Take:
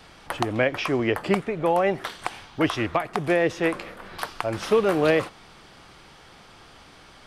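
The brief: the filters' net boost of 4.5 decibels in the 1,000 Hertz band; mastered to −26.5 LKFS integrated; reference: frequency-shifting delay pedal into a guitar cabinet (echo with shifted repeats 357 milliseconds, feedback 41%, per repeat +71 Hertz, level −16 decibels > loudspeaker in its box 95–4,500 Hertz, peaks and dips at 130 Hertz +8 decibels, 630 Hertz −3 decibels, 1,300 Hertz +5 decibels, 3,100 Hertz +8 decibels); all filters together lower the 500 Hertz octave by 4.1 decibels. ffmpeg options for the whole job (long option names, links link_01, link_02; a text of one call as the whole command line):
ffmpeg -i in.wav -filter_complex "[0:a]equalizer=frequency=500:width_type=o:gain=-5.5,equalizer=frequency=1000:width_type=o:gain=6,asplit=5[link_01][link_02][link_03][link_04][link_05];[link_02]adelay=357,afreqshift=71,volume=-16dB[link_06];[link_03]adelay=714,afreqshift=142,volume=-23.7dB[link_07];[link_04]adelay=1071,afreqshift=213,volume=-31.5dB[link_08];[link_05]adelay=1428,afreqshift=284,volume=-39.2dB[link_09];[link_01][link_06][link_07][link_08][link_09]amix=inputs=5:normalize=0,highpass=95,equalizer=frequency=130:width_type=q:width=4:gain=8,equalizer=frequency=630:width_type=q:width=4:gain=-3,equalizer=frequency=1300:width_type=q:width=4:gain=5,equalizer=frequency=3100:width_type=q:width=4:gain=8,lowpass=frequency=4500:width=0.5412,lowpass=frequency=4500:width=1.3066,volume=-2dB" out.wav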